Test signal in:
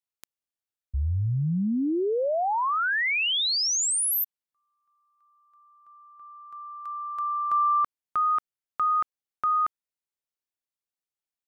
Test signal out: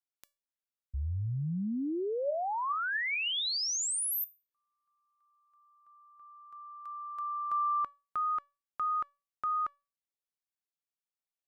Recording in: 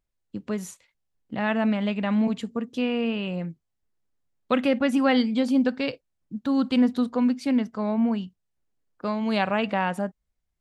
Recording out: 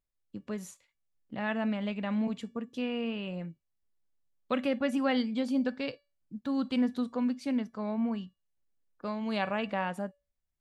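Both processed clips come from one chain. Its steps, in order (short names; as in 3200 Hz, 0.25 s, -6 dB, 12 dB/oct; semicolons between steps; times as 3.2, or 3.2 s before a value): resonator 570 Hz, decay 0.3 s, mix 60%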